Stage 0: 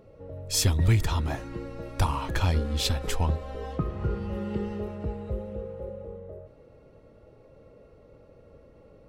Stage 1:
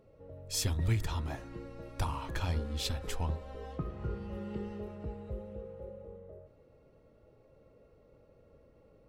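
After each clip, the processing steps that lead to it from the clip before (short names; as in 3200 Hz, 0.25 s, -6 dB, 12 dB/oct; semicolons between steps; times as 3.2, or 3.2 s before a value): de-hum 95.98 Hz, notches 18; gain -8 dB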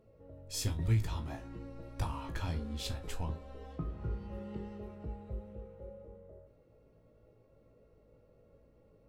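low shelf 450 Hz +3.5 dB; resonator 55 Hz, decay 0.19 s, harmonics all, mix 90%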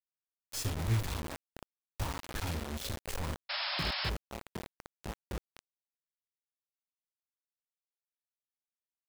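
bit-crush 6-bit; painted sound noise, 3.49–4.1, 550–5400 Hz -34 dBFS; gain -1.5 dB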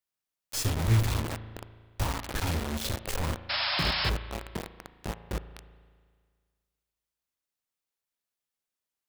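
spring tank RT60 1.8 s, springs 36 ms, chirp 65 ms, DRR 12.5 dB; gain +6 dB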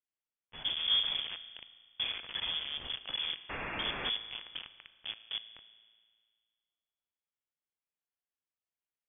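inverted band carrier 3400 Hz; gain -7.5 dB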